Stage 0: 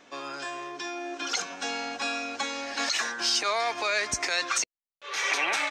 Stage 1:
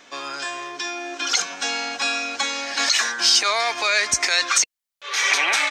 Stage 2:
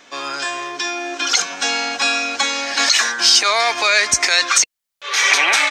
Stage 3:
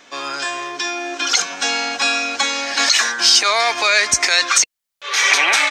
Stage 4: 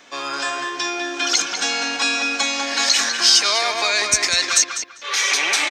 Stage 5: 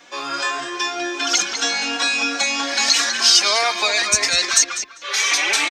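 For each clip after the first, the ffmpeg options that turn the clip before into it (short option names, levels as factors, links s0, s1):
-af "tiltshelf=f=1100:g=-4.5,bandreject=f=2700:w=27,volume=1.88"
-af "dynaudnorm=f=100:g=3:m=1.5,volume=1.26"
-af anull
-filter_complex "[0:a]acrossover=split=440|3100[s0][s1][s2];[s1]alimiter=limit=0.178:level=0:latency=1:release=377[s3];[s0][s3][s2]amix=inputs=3:normalize=0,asplit=2[s4][s5];[s5]adelay=198,lowpass=f=2900:p=1,volume=0.631,asplit=2[s6][s7];[s7]adelay=198,lowpass=f=2900:p=1,volume=0.26,asplit=2[s8][s9];[s9]adelay=198,lowpass=f=2900:p=1,volume=0.26,asplit=2[s10][s11];[s11]adelay=198,lowpass=f=2900:p=1,volume=0.26[s12];[s4][s6][s8][s10][s12]amix=inputs=5:normalize=0,volume=0.891"
-filter_complex "[0:a]asplit=2[s0][s1];[s1]adelay=3.8,afreqshift=3[s2];[s0][s2]amix=inputs=2:normalize=1,volume=1.5"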